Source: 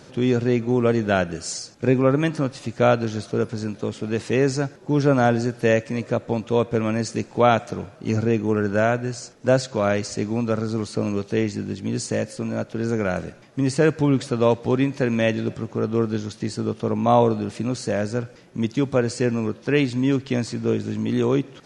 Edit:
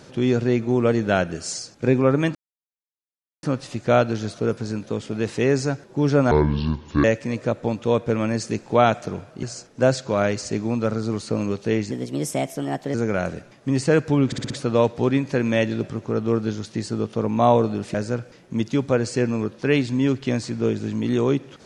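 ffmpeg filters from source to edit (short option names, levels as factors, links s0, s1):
-filter_complex "[0:a]asplit=12[s0][s1][s2][s3][s4][s5][s6][s7][s8][s9][s10][s11];[s0]atrim=end=2.35,asetpts=PTS-STARTPTS,afade=t=out:st=2.346:d=0.004:c=hsin,apad=pad_dur=1.08[s12];[s1]atrim=start=2.35:end=5.234,asetpts=PTS-STARTPTS,afade=t=in:d=0.004:c=hsin[s13];[s2]atrim=start=5.23:end=5.69,asetpts=PTS-STARTPTS,asetrate=27783,aresample=44100[s14];[s3]atrim=start=5.686:end=8.082[s15];[s4]atrim=start=9.088:end=11.574[s16];[s5]atrim=start=11.57:end=12.85,asetpts=PTS-STARTPTS,asetrate=54684,aresample=44100[s17];[s6]atrim=start=12.846:end=14.232[s18];[s7]atrim=start=14.168:end=14.232[s19];[s8]atrim=start=14.168:end=14.232[s20];[s9]atrim=start=14.168:end=14.232[s21];[s10]atrim=start=14.168:end=17.612[s22];[s11]atrim=start=17.978[s23];[s12][s13]concat=n=2:v=0:a=1[s24];[s24][s14]acrossfade=d=0.004:c1=hsin:c2=hsin[s25];[s25][s15]acrossfade=d=0.004:c1=hsin:c2=hsin[s26];[s26][s16]acrossfade=d=0.004:c1=hsin:c2=hsin[s27];[s27][s17]acrossfade=d=0.004:c1=hsin:c2=hsin[s28];[s28][s18]acrossfade=d=0.004:c1=hsin:c2=hsin[s29];[s29][s19]acrossfade=d=0.004:c1=hsin:c2=hsin[s30];[s30][s20]acrossfade=d=0.004:c1=hsin:c2=hsin[s31];[s31][s21]acrossfade=d=0.004:c1=hsin:c2=hsin[s32];[s32][s22]acrossfade=d=0.004:c1=hsin:c2=hsin[s33];[s33][s23]acrossfade=d=0.004:c1=hsin:c2=hsin"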